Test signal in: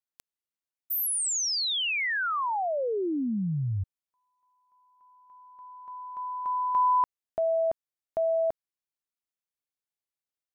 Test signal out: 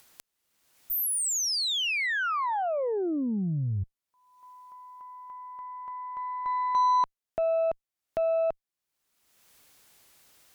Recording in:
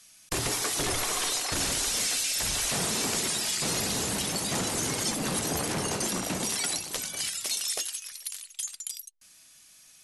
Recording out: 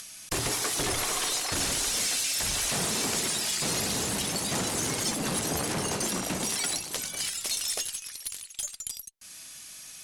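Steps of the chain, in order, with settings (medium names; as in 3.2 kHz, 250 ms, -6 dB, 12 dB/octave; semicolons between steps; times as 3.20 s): upward compressor, threshold -34 dBFS; Chebyshev shaper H 2 -30 dB, 8 -28 dB, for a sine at -15 dBFS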